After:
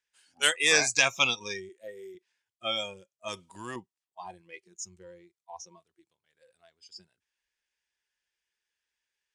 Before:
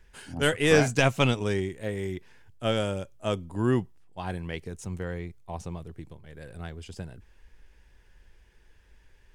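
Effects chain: frequency weighting ITU-R 468; spectral noise reduction 22 dB; 1.69–2.15 s: resonant low shelf 250 Hz -8.5 dB, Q 1.5; 3.28–3.76 s: spectrum-flattening compressor 2:1; trim -2.5 dB

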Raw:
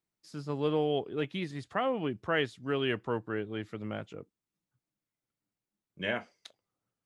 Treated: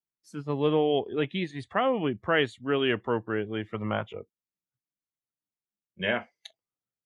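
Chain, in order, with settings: spectral noise reduction 17 dB; 3.74–4.18 s: graphic EQ 125/1000/4000 Hz +4/+11/+4 dB; trim +5 dB

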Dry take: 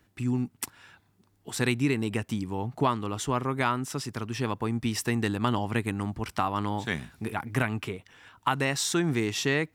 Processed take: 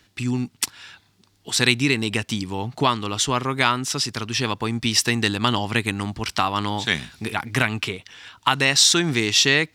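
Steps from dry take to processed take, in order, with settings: peaking EQ 4.3 kHz +13.5 dB 2 oct; trim +3.5 dB

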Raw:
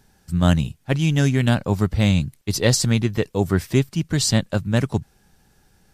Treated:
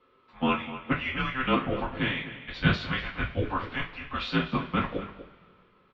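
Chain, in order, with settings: mistuned SSB -390 Hz 530–3500 Hz; echo from a far wall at 42 m, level -13 dB; two-slope reverb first 0.25 s, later 2 s, from -22 dB, DRR -6.5 dB; trim -6 dB

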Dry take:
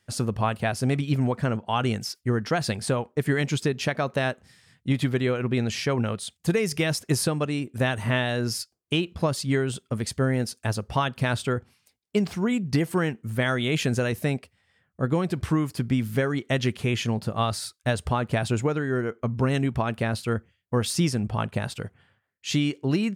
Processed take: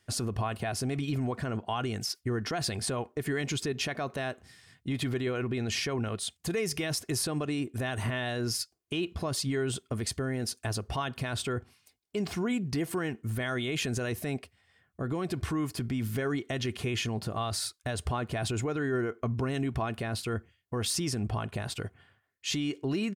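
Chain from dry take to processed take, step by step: peak limiter -21.5 dBFS, peak gain reduction 11 dB; comb 2.8 ms, depth 35%

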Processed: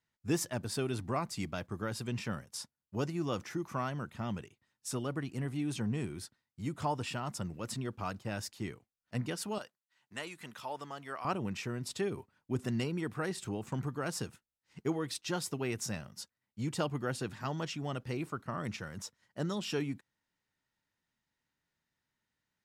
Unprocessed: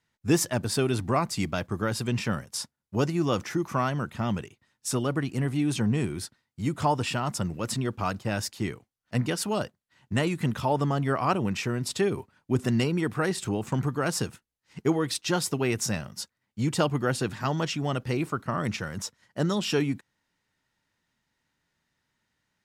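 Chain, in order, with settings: 9.58–11.25 s: high-pass 1.1 kHz 6 dB/octave; trim -9 dB

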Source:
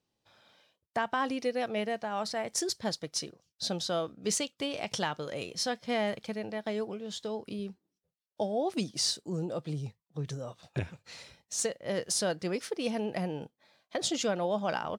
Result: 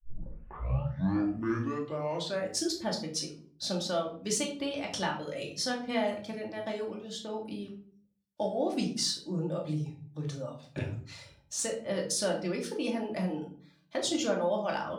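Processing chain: tape start-up on the opening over 2.75 s; reverb removal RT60 0.82 s; simulated room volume 510 m³, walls furnished, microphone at 2.5 m; trim -3 dB

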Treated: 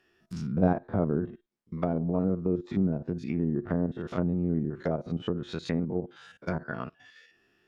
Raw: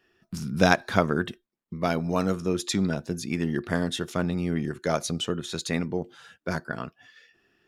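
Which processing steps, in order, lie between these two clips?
spectrogram pixelated in time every 50 ms; low-pass that closes with the level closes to 580 Hz, closed at -24.5 dBFS

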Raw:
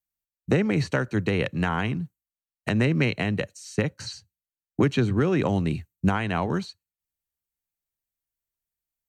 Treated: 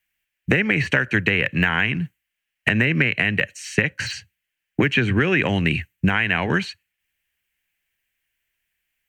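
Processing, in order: de-esser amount 100%; high-order bell 2.2 kHz +16 dB 1.2 oct; compression, threshold -24 dBFS, peak gain reduction 10 dB; trim +8.5 dB

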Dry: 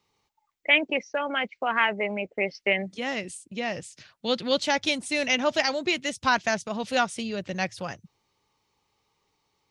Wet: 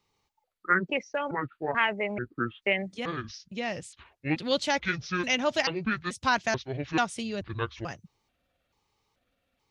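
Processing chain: pitch shift switched off and on -8.5 st, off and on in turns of 436 ms; bass shelf 68 Hz +8 dB; trim -2.5 dB

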